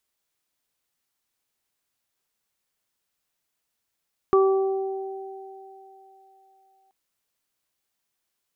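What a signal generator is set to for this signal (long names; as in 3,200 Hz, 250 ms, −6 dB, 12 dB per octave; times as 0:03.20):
harmonic partials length 2.58 s, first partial 386 Hz, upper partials −13.5/−6 dB, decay 2.59 s, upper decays 4.59/0.81 s, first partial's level −14 dB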